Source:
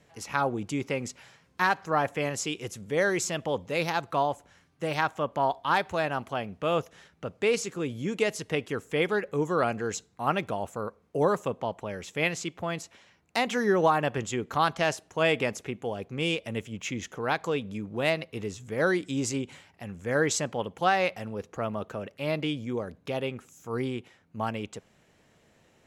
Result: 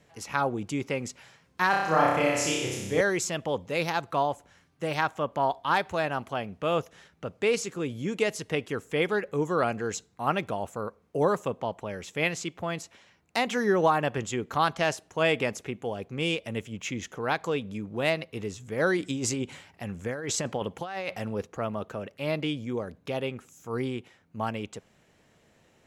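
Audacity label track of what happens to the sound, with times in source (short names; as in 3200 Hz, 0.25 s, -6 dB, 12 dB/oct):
1.700000	3.010000	flutter echo walls apart 5.3 m, dies away in 1.1 s
18.970000	21.470000	negative-ratio compressor -31 dBFS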